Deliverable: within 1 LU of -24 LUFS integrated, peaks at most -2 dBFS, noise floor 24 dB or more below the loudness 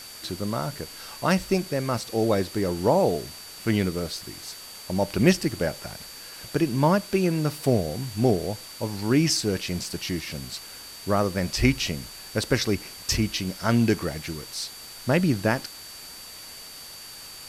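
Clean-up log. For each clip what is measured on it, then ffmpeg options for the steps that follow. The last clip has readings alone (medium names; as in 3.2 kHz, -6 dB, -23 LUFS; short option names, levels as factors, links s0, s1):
steady tone 4.6 kHz; tone level -43 dBFS; noise floor -42 dBFS; noise floor target -50 dBFS; loudness -25.5 LUFS; peak level -4.5 dBFS; loudness target -24.0 LUFS
-> -af "bandreject=f=4600:w=30"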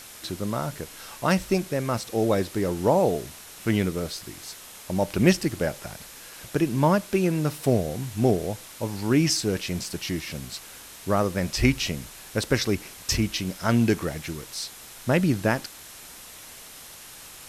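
steady tone not found; noise floor -45 dBFS; noise floor target -50 dBFS
-> -af "afftdn=nr=6:nf=-45"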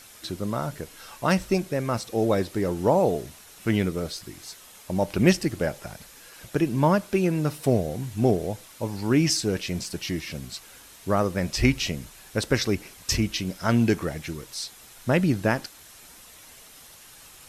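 noise floor -49 dBFS; noise floor target -50 dBFS
-> -af "afftdn=nr=6:nf=-49"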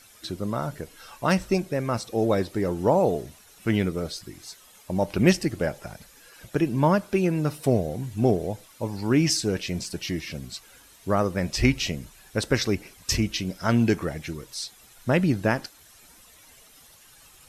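noise floor -53 dBFS; loudness -25.5 LUFS; peak level -5.0 dBFS; loudness target -24.0 LUFS
-> -af "volume=1.19"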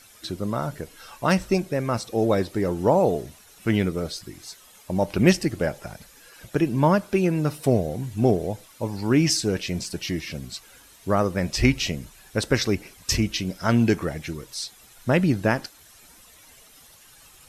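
loudness -24.0 LUFS; peak level -3.5 dBFS; noise floor -52 dBFS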